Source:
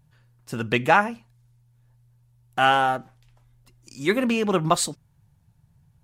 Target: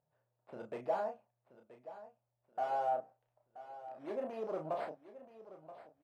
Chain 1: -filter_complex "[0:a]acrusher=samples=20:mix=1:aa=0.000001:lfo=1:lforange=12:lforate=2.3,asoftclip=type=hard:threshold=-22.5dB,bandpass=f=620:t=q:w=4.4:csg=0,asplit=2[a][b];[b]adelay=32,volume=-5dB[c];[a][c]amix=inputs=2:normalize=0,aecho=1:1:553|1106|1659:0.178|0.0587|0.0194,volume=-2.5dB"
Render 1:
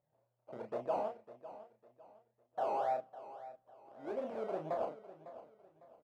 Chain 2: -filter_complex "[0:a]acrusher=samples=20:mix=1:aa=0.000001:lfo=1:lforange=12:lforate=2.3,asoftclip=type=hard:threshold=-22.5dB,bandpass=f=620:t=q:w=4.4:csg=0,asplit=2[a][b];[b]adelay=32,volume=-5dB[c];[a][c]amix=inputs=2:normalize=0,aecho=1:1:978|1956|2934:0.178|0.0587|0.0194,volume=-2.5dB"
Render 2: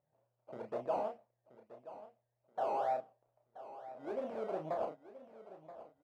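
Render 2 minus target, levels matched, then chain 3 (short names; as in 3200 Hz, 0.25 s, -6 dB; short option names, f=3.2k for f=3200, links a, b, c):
decimation with a swept rate: distortion +12 dB
-filter_complex "[0:a]acrusher=samples=6:mix=1:aa=0.000001:lfo=1:lforange=3.6:lforate=2.3,asoftclip=type=hard:threshold=-22.5dB,bandpass=f=620:t=q:w=4.4:csg=0,asplit=2[a][b];[b]adelay=32,volume=-5dB[c];[a][c]amix=inputs=2:normalize=0,aecho=1:1:978|1956|2934:0.178|0.0587|0.0194,volume=-2.5dB"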